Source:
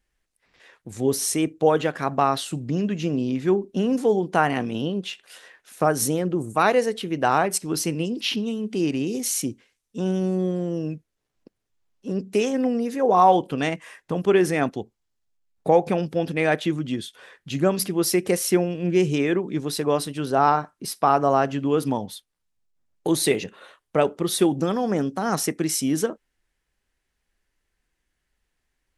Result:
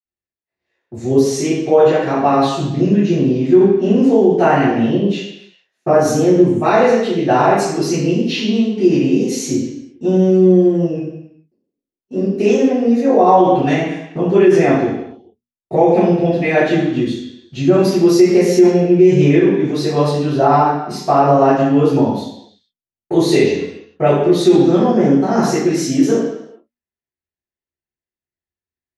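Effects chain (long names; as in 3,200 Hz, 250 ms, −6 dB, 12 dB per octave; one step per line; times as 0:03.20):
noise gate −41 dBFS, range −25 dB
mains-hum notches 60/120/180/240 Hz
convolution reverb RT60 0.80 s, pre-delay 47 ms
boost into a limiter −2.5 dB
level −1 dB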